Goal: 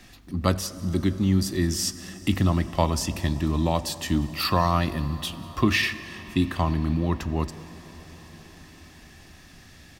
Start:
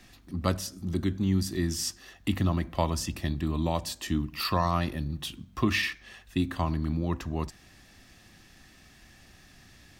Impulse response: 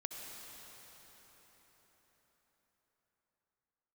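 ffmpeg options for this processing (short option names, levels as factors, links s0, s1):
-filter_complex "[0:a]aecho=1:1:193:0.0668,asplit=2[s0][s1];[1:a]atrim=start_sample=2205,asetrate=34839,aresample=44100[s2];[s1][s2]afir=irnorm=-1:irlink=0,volume=0.266[s3];[s0][s3]amix=inputs=2:normalize=0,volume=1.41"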